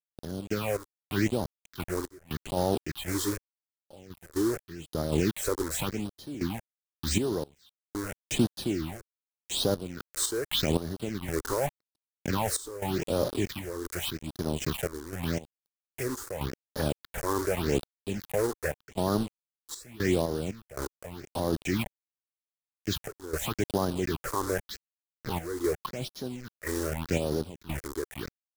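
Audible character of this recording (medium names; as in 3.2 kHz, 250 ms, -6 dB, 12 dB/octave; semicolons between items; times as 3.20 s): a quantiser's noise floor 6-bit, dither none; phasing stages 6, 0.85 Hz, lowest notch 170–2400 Hz; random-step tremolo 3.9 Hz, depth 100%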